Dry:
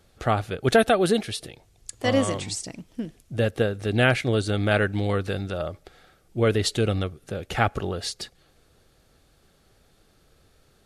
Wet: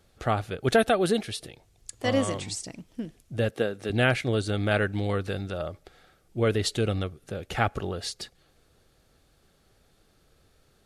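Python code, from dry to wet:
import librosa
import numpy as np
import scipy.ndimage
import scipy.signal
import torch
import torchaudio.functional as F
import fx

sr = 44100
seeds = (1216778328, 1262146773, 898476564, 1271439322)

y = fx.highpass(x, sr, hz=180.0, slope=12, at=(3.49, 3.9))
y = y * 10.0 ** (-3.0 / 20.0)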